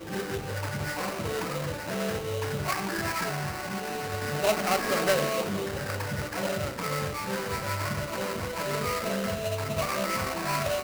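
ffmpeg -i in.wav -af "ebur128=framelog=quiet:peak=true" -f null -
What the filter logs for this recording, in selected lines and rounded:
Integrated loudness:
  I:         -29.9 LUFS
  Threshold: -39.9 LUFS
Loudness range:
  LRA:         2.9 LU
  Threshold: -49.7 LUFS
  LRA low:   -31.2 LUFS
  LRA high:  -28.3 LUFS
True peak:
  Peak:      -12.7 dBFS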